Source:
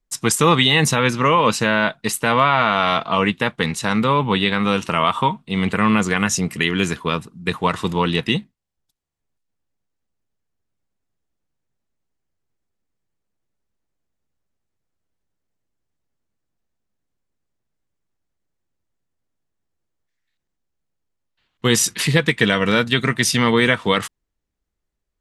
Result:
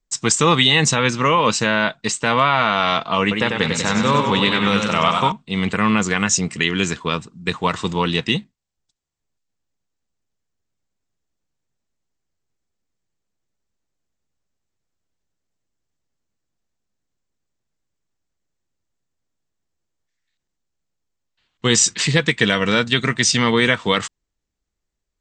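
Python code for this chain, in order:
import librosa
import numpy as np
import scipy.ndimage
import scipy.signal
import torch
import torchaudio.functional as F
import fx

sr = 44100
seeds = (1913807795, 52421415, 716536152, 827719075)

y = scipy.signal.sosfilt(scipy.signal.butter(16, 8200.0, 'lowpass', fs=sr, output='sos'), x)
y = fx.high_shelf(y, sr, hz=4900.0, db=8.5)
y = fx.echo_warbled(y, sr, ms=97, feedback_pct=65, rate_hz=2.8, cents=90, wet_db=-5.0, at=(3.21, 5.32))
y = y * librosa.db_to_amplitude(-1.0)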